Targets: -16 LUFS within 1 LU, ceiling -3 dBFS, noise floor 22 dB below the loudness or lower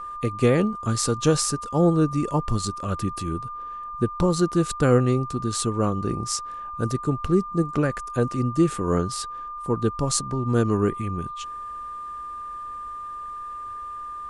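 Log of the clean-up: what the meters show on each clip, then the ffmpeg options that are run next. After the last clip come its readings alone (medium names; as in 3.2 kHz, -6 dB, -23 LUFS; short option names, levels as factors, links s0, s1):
steady tone 1.2 kHz; tone level -32 dBFS; loudness -25.0 LUFS; peak level -6.0 dBFS; loudness target -16.0 LUFS
-> -af "bandreject=f=1200:w=30"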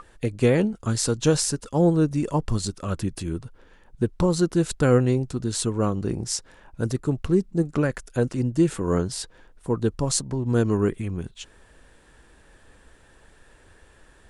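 steady tone not found; loudness -24.5 LUFS; peak level -6.5 dBFS; loudness target -16.0 LUFS
-> -af "volume=2.66,alimiter=limit=0.708:level=0:latency=1"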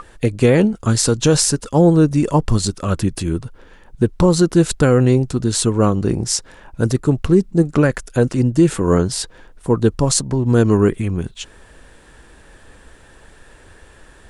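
loudness -16.5 LUFS; peak level -3.0 dBFS; noise floor -47 dBFS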